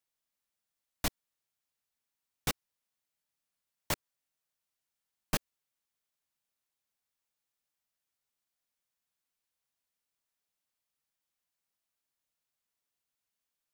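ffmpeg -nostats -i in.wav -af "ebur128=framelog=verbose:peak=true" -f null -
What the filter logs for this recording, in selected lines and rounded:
Integrated loudness:
  I:         -37.5 LUFS
  Threshold: -47.5 LUFS
Loudness range:
  LRA:         2.7 LU
  Threshold: -63.4 LUFS
  LRA low:   -45.6 LUFS
  LRA high:  -42.9 LUFS
True peak:
  Peak:      -14.6 dBFS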